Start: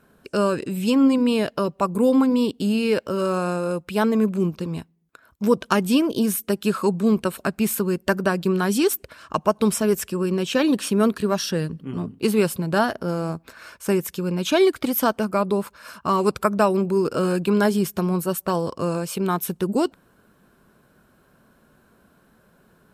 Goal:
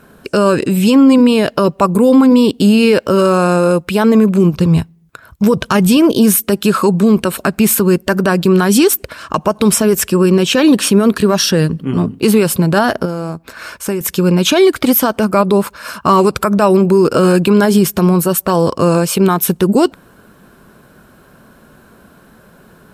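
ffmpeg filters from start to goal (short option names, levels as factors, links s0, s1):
-filter_complex "[0:a]asettb=1/sr,asplit=3[s0][s1][s2];[s0]atrim=end=4.534[s3];[s1]atrim=start=4.53:end=5.97,asetpts=PTS-STARTPTS,afade=t=in:d=0.004:c=qsin,afade=t=out:st=1.436:d=0.004:c=qsin,lowshelf=f=180:t=q:w=1.5:g=7[s4];[s2]atrim=start=5.966[s5];[s3][s4]acrossfade=d=0.004:c1=hsin:c2=qsin[s6];[s6][s5]acrossfade=d=0.004:c1=qsin:c2=hsin,asettb=1/sr,asplit=3[s7][s8][s9];[s7]atrim=end=13.054[s10];[s8]atrim=start=13.05:end=14.01,asetpts=PTS-STARTPTS,afade=t=in:d=0.004:c=qsin,afade=t=out:st=0.956:d=0.004:c=qsin,acompressor=threshold=0.0126:ratio=2[s11];[s9]atrim=start=14.006[s12];[s10][s11]acrossfade=d=0.004:c1=hsin:c2=qsin[s13];[s13][s12]acrossfade=d=0.004:c1=qsin:c2=hsin,alimiter=level_in=5.31:limit=0.891:release=50:level=0:latency=1,volume=0.891"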